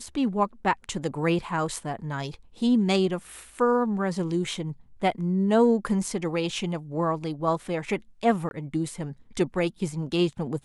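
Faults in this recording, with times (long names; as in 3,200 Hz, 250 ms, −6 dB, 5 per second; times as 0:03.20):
0:08.49–0:08.51: drop-out 21 ms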